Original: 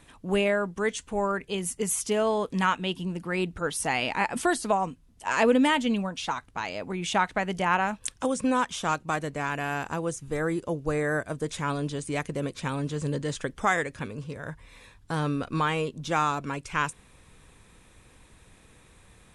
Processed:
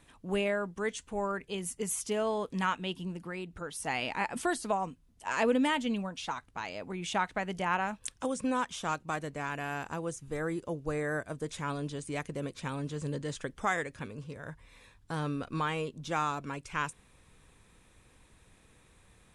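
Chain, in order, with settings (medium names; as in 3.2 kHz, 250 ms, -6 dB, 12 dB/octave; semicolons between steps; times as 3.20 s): 3.11–3.87 s: compression 5:1, threshold -30 dBFS, peak gain reduction 7 dB; trim -6 dB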